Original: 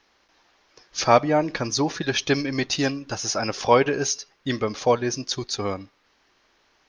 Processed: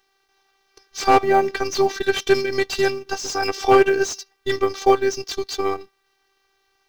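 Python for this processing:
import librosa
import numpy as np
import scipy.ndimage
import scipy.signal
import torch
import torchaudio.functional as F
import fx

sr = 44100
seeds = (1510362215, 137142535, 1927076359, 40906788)

y = fx.law_mismatch(x, sr, coded='A')
y = fx.robotise(y, sr, hz=389.0)
y = fx.slew_limit(y, sr, full_power_hz=120.0)
y = y * 10.0 ** (7.5 / 20.0)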